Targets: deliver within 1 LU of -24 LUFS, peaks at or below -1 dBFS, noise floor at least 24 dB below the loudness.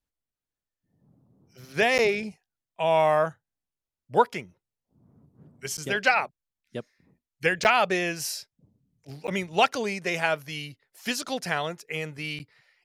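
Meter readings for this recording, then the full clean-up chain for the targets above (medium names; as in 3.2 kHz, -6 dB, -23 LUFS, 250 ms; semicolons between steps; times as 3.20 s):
dropouts 5; longest dropout 9.2 ms; loudness -26.0 LUFS; peak level -7.0 dBFS; loudness target -24.0 LUFS
-> interpolate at 1.98/5.77/7.64/9.27/12.39 s, 9.2 ms; trim +2 dB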